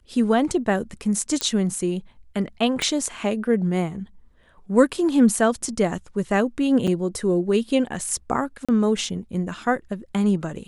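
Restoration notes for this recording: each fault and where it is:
0:01.41: click −8 dBFS
0:02.82: click −11 dBFS
0:06.87–0:06.88: drop-out 5.8 ms
0:08.65–0:08.69: drop-out 36 ms

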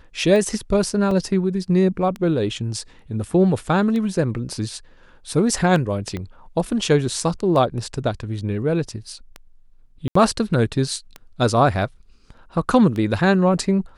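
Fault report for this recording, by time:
scratch tick 33 1/3 rpm −16 dBFS
0:01.11: drop-out 2.9 ms
0:06.17: click −16 dBFS
0:10.08–0:10.15: drop-out 74 ms

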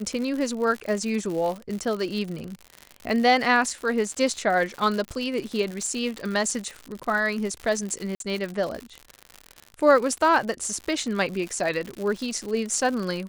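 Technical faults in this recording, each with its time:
surface crackle 110 per second −29 dBFS
0:01.69: drop-out 3.2 ms
0:08.15–0:08.20: drop-out 52 ms

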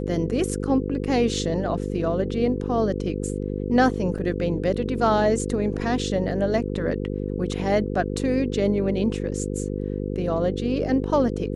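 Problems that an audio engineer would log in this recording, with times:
mains buzz 50 Hz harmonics 10 −28 dBFS
0:04.18: drop-out 4.3 ms

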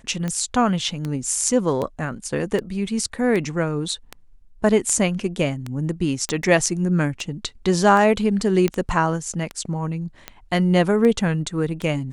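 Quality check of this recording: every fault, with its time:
scratch tick 78 rpm −14 dBFS
0:06.29: click −10 dBFS
0:08.68: click −9 dBFS

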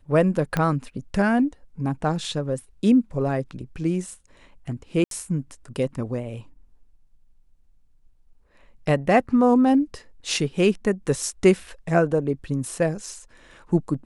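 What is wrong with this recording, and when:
0:00.57: click −10 dBFS
0:05.04–0:05.11: drop-out 72 ms

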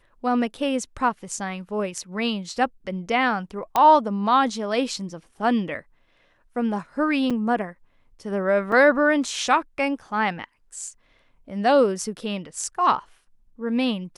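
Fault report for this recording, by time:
0:03.76: click −8 dBFS
0:07.30–0:07.31: drop-out 5.5 ms
0:08.72: drop-out 3.4 ms

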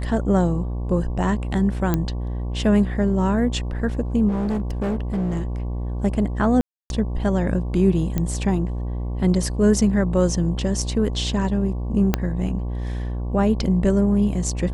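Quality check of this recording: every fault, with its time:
mains buzz 60 Hz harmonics 19 −26 dBFS
0:01.94: click −8 dBFS
0:04.28–0:05.43: clipping −20 dBFS
0:06.61–0:06.90: drop-out 291 ms
0:08.18: click −10 dBFS
0:12.14: click −5 dBFS

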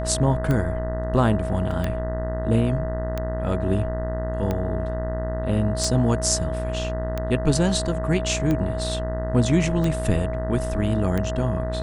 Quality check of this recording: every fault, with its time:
mains buzz 60 Hz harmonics 33 −28 dBFS
scratch tick 45 rpm −13 dBFS
whistle 640 Hz −29 dBFS
0:01.71: drop-out 2.1 ms

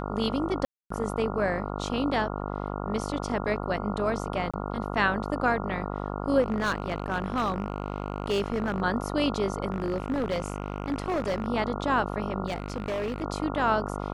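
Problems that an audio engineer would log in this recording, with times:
mains buzz 50 Hz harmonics 28 −33 dBFS
0:00.65–0:00.90: drop-out 254 ms
0:04.51–0:04.54: drop-out 26 ms
0:06.41–0:08.82: clipping −22 dBFS
0:09.72–0:11.46: clipping −23.5 dBFS
0:12.46–0:13.24: clipping −26.5 dBFS

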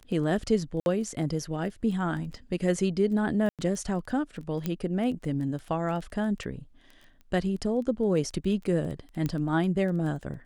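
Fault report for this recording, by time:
surface crackle 11 per second −35 dBFS
0:00.80–0:00.86: drop-out 61 ms
0:03.49–0:03.59: drop-out 97 ms
0:04.66: click −16 dBFS
0:09.26: click −17 dBFS

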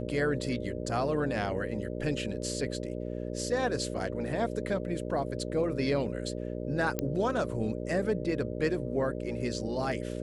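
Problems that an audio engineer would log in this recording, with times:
mains buzz 60 Hz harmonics 10 −36 dBFS
0:06.99: click −14 dBFS

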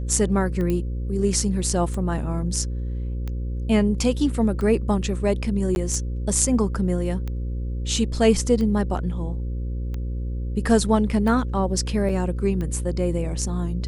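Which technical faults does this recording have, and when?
mains buzz 60 Hz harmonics 9 −27 dBFS
scratch tick 45 rpm −19 dBFS
0:00.70: click −14 dBFS
0:05.75–0:05.76: drop-out 11 ms
0:12.09: drop-out 4.7 ms

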